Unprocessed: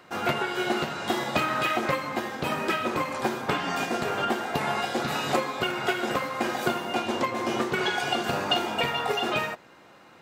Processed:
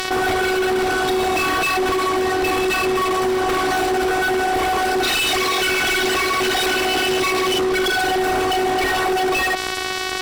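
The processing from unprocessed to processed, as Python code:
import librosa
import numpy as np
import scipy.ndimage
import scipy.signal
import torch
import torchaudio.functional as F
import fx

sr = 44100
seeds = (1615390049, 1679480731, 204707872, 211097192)

y = fx.small_body(x, sr, hz=(210.0, 540.0, 2500.0), ring_ms=45, db=6)
y = 10.0 ** (-24.0 / 20.0) * np.tanh(y / 10.0 ** (-24.0 / 20.0))
y = fx.weighting(y, sr, curve='D', at=(5.03, 7.59))
y = fx.robotise(y, sr, hz=374.0)
y = fx.fuzz(y, sr, gain_db=41.0, gate_db=-49.0)
y = fx.peak_eq(y, sr, hz=210.0, db=3.0, octaves=2.0)
y = fx.notch(y, sr, hz=6600.0, q=15.0)
y = fx.env_flatten(y, sr, amount_pct=70)
y = y * librosa.db_to_amplitude(-5.5)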